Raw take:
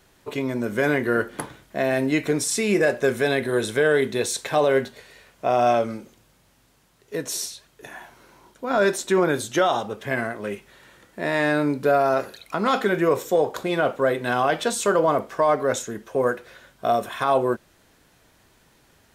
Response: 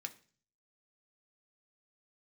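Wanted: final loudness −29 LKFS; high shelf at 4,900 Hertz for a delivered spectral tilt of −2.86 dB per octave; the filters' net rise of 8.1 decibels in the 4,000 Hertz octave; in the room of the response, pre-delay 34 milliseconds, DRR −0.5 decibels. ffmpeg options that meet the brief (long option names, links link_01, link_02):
-filter_complex "[0:a]equalizer=frequency=4000:width_type=o:gain=8,highshelf=frequency=4900:gain=4,asplit=2[link_01][link_02];[1:a]atrim=start_sample=2205,adelay=34[link_03];[link_02][link_03]afir=irnorm=-1:irlink=0,volume=3dB[link_04];[link_01][link_04]amix=inputs=2:normalize=0,volume=-9.5dB"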